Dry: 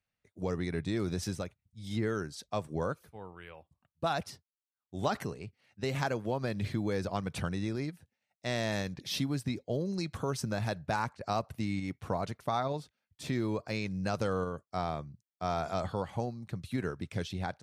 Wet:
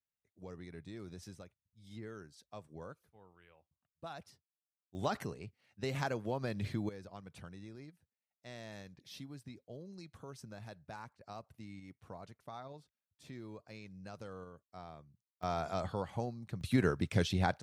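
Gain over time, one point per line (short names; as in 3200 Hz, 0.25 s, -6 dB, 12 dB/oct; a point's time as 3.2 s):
-15 dB
from 4.95 s -4 dB
from 6.89 s -16 dB
from 15.43 s -3.5 dB
from 16.61 s +4.5 dB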